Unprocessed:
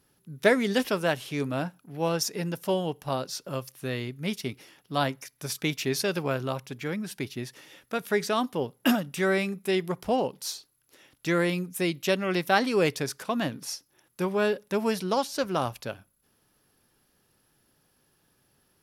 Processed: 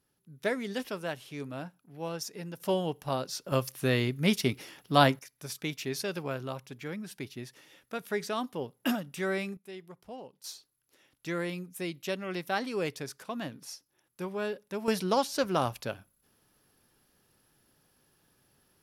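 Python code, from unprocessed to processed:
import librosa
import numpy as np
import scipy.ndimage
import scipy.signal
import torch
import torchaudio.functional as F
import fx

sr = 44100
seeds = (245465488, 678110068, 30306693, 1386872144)

y = fx.gain(x, sr, db=fx.steps((0.0, -9.5), (2.6, -2.0), (3.52, 5.0), (5.19, -6.5), (9.57, -18.5), (10.44, -8.5), (14.88, -0.5)))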